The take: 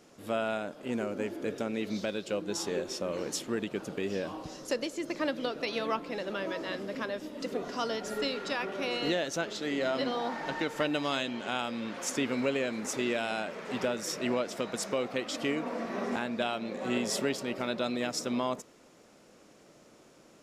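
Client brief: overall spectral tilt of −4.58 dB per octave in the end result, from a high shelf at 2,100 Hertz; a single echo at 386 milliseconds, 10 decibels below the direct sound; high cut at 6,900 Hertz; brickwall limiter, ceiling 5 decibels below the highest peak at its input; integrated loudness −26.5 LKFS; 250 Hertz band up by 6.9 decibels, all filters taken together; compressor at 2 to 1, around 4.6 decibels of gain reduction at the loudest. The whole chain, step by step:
low-pass filter 6,900 Hz
parametric band 250 Hz +8 dB
high-shelf EQ 2,100 Hz −4.5 dB
downward compressor 2 to 1, threshold −29 dBFS
brickwall limiter −23.5 dBFS
single-tap delay 386 ms −10 dB
level +7 dB

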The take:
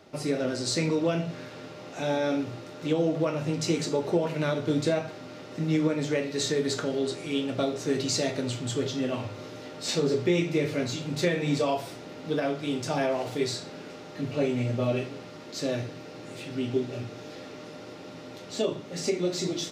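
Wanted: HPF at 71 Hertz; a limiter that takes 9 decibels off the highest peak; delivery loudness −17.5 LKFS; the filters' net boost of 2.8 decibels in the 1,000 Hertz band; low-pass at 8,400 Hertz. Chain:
high-pass filter 71 Hz
low-pass filter 8,400 Hz
parametric band 1,000 Hz +4 dB
level +14 dB
brickwall limiter −7 dBFS

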